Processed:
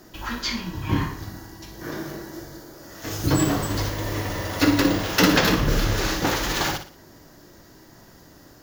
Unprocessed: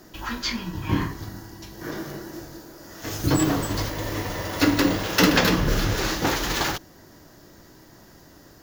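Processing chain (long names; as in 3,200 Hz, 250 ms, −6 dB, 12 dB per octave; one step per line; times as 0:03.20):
0:02.24–0:02.74: notch filter 2,600 Hz, Q 10
flutter between parallel walls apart 10.1 metres, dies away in 0.39 s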